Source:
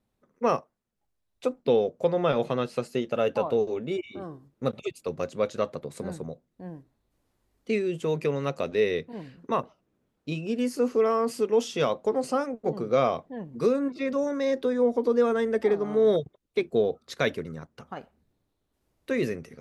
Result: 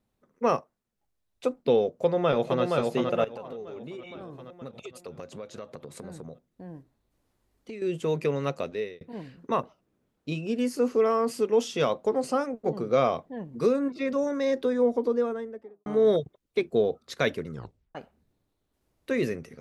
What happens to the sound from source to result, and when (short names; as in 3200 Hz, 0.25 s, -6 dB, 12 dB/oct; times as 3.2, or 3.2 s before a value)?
1.85–2.62 echo throw 0.47 s, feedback 55%, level -3 dB
3.24–7.82 compressor 5:1, threshold -37 dBFS
8.5–9.01 fade out
14.77–15.86 studio fade out
17.52 tape stop 0.43 s